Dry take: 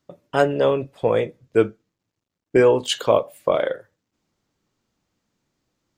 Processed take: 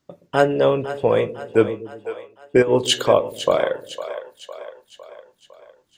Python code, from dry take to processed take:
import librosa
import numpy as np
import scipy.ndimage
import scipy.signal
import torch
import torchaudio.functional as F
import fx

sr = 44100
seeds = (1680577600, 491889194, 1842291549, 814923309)

y = fx.over_compress(x, sr, threshold_db=-18.0, ratio=-0.5, at=(2.62, 3.08))
y = fx.echo_split(y, sr, split_hz=450.0, low_ms=121, high_ms=506, feedback_pct=52, wet_db=-12.0)
y = y * librosa.db_to_amplitude(1.5)